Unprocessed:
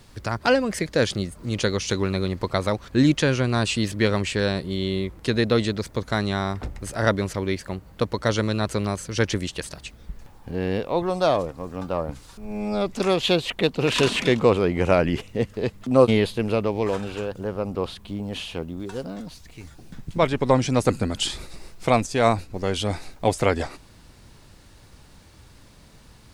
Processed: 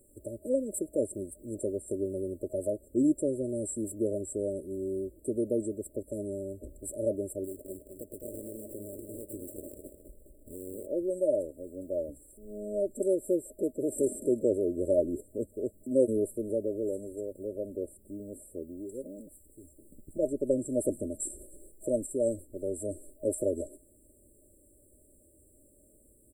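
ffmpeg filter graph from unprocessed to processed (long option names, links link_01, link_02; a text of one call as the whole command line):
ffmpeg -i in.wav -filter_complex "[0:a]asettb=1/sr,asplit=3[link_01][link_02][link_03];[link_01]atrim=end=7.444[link_04];[link_02]atrim=start=7.44:end=10.87,asetpts=PTS-STARTPTS,afade=type=in:duration=0.004:curve=qsin,afade=type=out:start_time=3.426:duration=0.004:curve=qsin,acompressor=threshold=-27dB:ratio=10:attack=3.2:release=140:knee=1:detection=peak,acrusher=samples=22:mix=1:aa=0.000001:lfo=1:lforange=35.2:lforate=1.4,aecho=1:1:208|416|624|832:0.473|0.151|0.0485|0.0155,atrim=end_sample=151263[link_05];[link_03]atrim=start=10.866[link_06];[link_04][link_05]acrossfade=duration=0.004:curve1=hsin:curve2=qsin[link_07];[link_07][link_06]acrossfade=duration=0.004:curve1=qsin:curve2=hsin,afftfilt=real='re*(1-between(b*sr/4096,630,7400))':imag='im*(1-between(b*sr/4096,630,7400))':win_size=4096:overlap=0.75,bass=frequency=250:gain=-13,treble=frequency=4000:gain=3,aecho=1:1:3.1:0.54,volume=-4.5dB" out.wav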